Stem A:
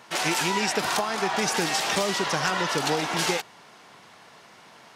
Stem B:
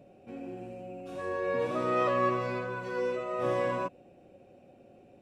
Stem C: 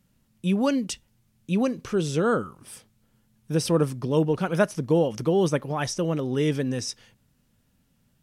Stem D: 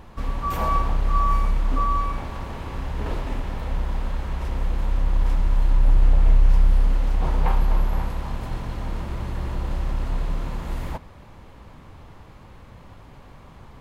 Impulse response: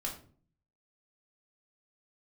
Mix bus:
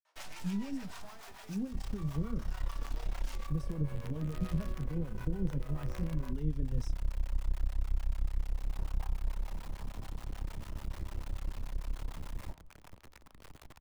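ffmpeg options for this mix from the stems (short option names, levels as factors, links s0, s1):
-filter_complex "[0:a]highpass=f=460:w=0.5412,highpass=f=460:w=1.3066,adelay=50,afade=t=out:st=0.79:d=0.57:silence=0.266073,afade=t=in:st=2.22:d=0.67:silence=0.334965,asplit=2[s0][s1];[s1]volume=0.266[s2];[1:a]highpass=230,bandreject=f=50:t=h:w=6,bandreject=f=100:t=h:w=6,bandreject=f=150:t=h:w=6,bandreject=f=200:t=h:w=6,bandreject=f=250:t=h:w=6,bandreject=f=300:t=h:w=6,bandreject=f=350:t=h:w=6,bandreject=f=400:t=h:w=6,bandreject=f=450:t=h:w=6,adelay=2450,volume=0.794[s3];[2:a]flanger=delay=7.9:depth=7.8:regen=-47:speed=0.28:shape=triangular,acrusher=bits=7:mix=0:aa=0.5,equalizer=f=140:w=0.33:g=13.5,volume=0.178[s4];[3:a]acompressor=threshold=0.0447:ratio=2.5,adelay=1550,volume=0.376,asplit=2[s5][s6];[s6]volume=0.158[s7];[s0][s3][s5]amix=inputs=3:normalize=0,acrusher=bits=5:dc=4:mix=0:aa=0.000001,alimiter=limit=0.0891:level=0:latency=1:release=76,volume=1[s8];[4:a]atrim=start_sample=2205[s9];[s2][s7]amix=inputs=2:normalize=0[s10];[s10][s9]afir=irnorm=-1:irlink=0[s11];[s4][s8][s11]amix=inputs=3:normalize=0,acrossover=split=250[s12][s13];[s13]acompressor=threshold=0.00708:ratio=8[s14];[s12][s14]amix=inputs=2:normalize=0,acrossover=split=560[s15][s16];[s15]aeval=exprs='val(0)*(1-0.7/2+0.7/2*cos(2*PI*6.8*n/s))':c=same[s17];[s16]aeval=exprs='val(0)*(1-0.7/2-0.7/2*cos(2*PI*6.8*n/s))':c=same[s18];[s17][s18]amix=inputs=2:normalize=0,lowshelf=f=86:g=6"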